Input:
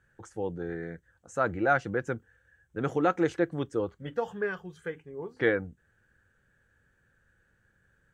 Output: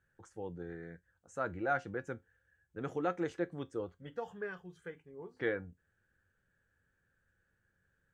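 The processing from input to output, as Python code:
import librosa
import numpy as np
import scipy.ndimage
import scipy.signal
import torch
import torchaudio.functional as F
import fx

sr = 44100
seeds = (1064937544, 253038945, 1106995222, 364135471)

y = fx.comb_fb(x, sr, f0_hz=89.0, decay_s=0.18, harmonics='all', damping=0.0, mix_pct=50)
y = y * librosa.db_to_amplitude(-6.0)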